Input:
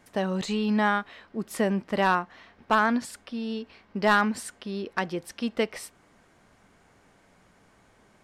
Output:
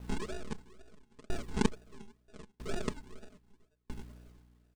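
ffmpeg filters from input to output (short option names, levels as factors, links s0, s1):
-filter_complex "[0:a]highpass=f=200:w=0.5412,highpass=f=200:w=1.3066,equalizer=f=480:t=q:w=4:g=-9,equalizer=f=1000:t=q:w=4:g=-6,equalizer=f=1500:t=q:w=4:g=3,equalizer=f=2400:t=q:w=4:g=-8,lowpass=f=2700:w=0.5412,lowpass=f=2700:w=1.3066,aeval=exprs='0.266*(cos(1*acos(clip(val(0)/0.266,-1,1)))-cos(1*PI/2))+0.0335*(cos(3*acos(clip(val(0)/0.266,-1,1)))-cos(3*PI/2))+0.0596*(cos(6*acos(clip(val(0)/0.266,-1,1)))-cos(6*PI/2))+0.0596*(cos(7*acos(clip(val(0)/0.266,-1,1)))-cos(7*PI/2))+0.00473*(cos(8*acos(clip(val(0)/0.266,-1,1)))-cos(8*PI/2))':c=same,bandreject=f=460:w=12,asplit=2[s0][s1];[s1]adelay=649,lowpass=f=1300:p=1,volume=0.376,asplit=2[s2][s3];[s3]adelay=649,lowpass=f=1300:p=1,volume=0.35,asplit=2[s4][s5];[s5]adelay=649,lowpass=f=1300:p=1,volume=0.35,asplit=2[s6][s7];[s7]adelay=649,lowpass=f=1300:p=1,volume=0.35[s8];[s2][s4][s6][s8]amix=inputs=4:normalize=0[s9];[s0][s9]amix=inputs=2:normalize=0,flanger=delay=17:depth=6:speed=0.84,aeval=exprs='0.316*(cos(1*acos(clip(val(0)/0.316,-1,1)))-cos(1*PI/2))+0.01*(cos(3*acos(clip(val(0)/0.316,-1,1)))-cos(3*PI/2))+0.0447*(cos(8*acos(clip(val(0)/0.316,-1,1)))-cos(8*PI/2))':c=same,aresample=11025,acrusher=samples=25:mix=1:aa=0.000001:lfo=1:lforange=15:lforate=1.2,aresample=44100,asetrate=76440,aresample=44100,aecho=1:1:4.7:0.78,aeval=exprs='val(0)+0.00251*(sin(2*PI*60*n/s)+sin(2*PI*2*60*n/s)/2+sin(2*PI*3*60*n/s)/3+sin(2*PI*4*60*n/s)/4+sin(2*PI*5*60*n/s)/5)':c=same,acrusher=bits=10:mix=0:aa=0.000001,aeval=exprs='val(0)*pow(10,-38*if(lt(mod(0.77*n/s,1),2*abs(0.77)/1000),1-mod(0.77*n/s,1)/(2*abs(0.77)/1000),(mod(0.77*n/s,1)-2*abs(0.77)/1000)/(1-2*abs(0.77)/1000))/20)':c=same,volume=2.66"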